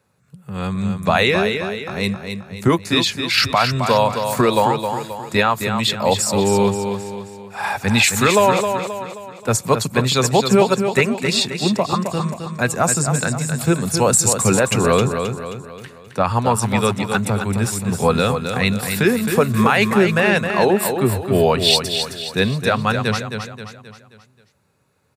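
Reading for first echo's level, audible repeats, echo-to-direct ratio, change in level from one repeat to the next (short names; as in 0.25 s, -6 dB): -7.0 dB, 5, -6.0 dB, -7.0 dB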